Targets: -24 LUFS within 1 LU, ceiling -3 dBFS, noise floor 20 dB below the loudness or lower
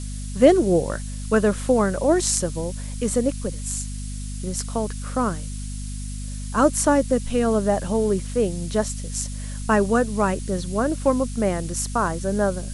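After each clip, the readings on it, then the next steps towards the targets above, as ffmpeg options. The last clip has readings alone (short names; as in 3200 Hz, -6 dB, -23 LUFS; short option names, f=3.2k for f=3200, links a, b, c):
hum 50 Hz; harmonics up to 250 Hz; hum level -28 dBFS; noise floor -31 dBFS; noise floor target -43 dBFS; loudness -22.5 LUFS; peak -2.0 dBFS; loudness target -24.0 LUFS
-> -af "bandreject=f=50:t=h:w=6,bandreject=f=100:t=h:w=6,bandreject=f=150:t=h:w=6,bandreject=f=200:t=h:w=6,bandreject=f=250:t=h:w=6"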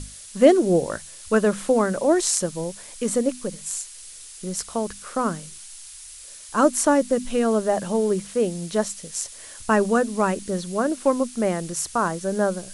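hum none; noise floor -42 dBFS; noise floor target -43 dBFS
-> -af "afftdn=nr=6:nf=-42"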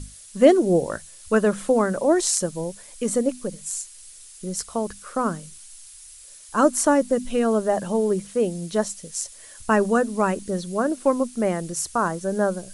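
noise floor -45 dBFS; loudness -23.0 LUFS; peak -2.5 dBFS; loudness target -24.0 LUFS
-> -af "volume=-1dB"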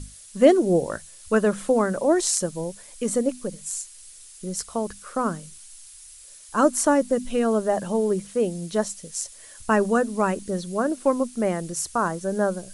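loudness -24.0 LUFS; peak -3.5 dBFS; noise floor -46 dBFS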